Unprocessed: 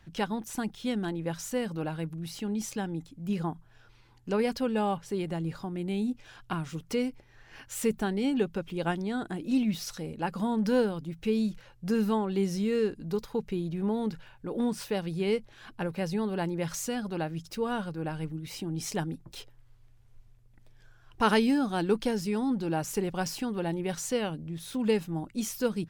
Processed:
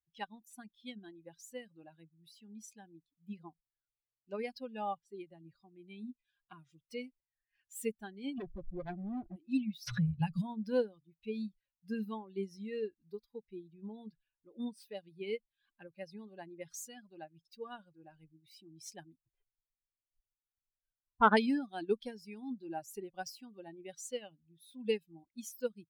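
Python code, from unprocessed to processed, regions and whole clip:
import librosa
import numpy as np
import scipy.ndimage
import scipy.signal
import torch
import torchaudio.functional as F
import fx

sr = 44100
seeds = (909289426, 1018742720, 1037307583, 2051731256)

y = fx.chain(x, sr, fx.lowpass_res(hz=1000.0, q=1.8),
    fx.tilt_eq(slope=-4.0),
    fx.clip_hard(threshold_db=-25.0), at=(8.38, 9.36))
y = fx.chain(y, sr, fx.low_shelf_res(hz=200.0, db=12.5, q=3.0),
    fx.band_squash(depth_pct=100), at=(9.87, 10.42))
y = fx.chain(y, sr, fx.lowpass(hz=1700.0, slope=24),
    fx.leveller(passes=1), at=(19.27, 21.37))
y = fx.bin_expand(y, sr, power=2.0)
y = fx.low_shelf(y, sr, hz=490.0, db=-5.5)
y = fx.upward_expand(y, sr, threshold_db=-45.0, expansion=1.5)
y = y * librosa.db_to_amplitude(3.0)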